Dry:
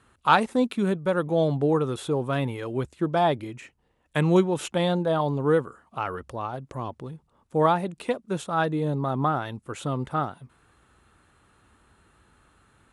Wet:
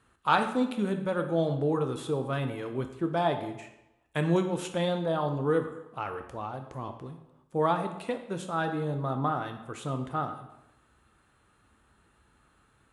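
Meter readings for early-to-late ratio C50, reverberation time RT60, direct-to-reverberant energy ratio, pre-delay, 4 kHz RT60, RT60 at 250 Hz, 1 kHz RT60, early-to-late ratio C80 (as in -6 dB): 9.0 dB, 0.90 s, 5.5 dB, 8 ms, 0.70 s, 0.85 s, 0.95 s, 11.5 dB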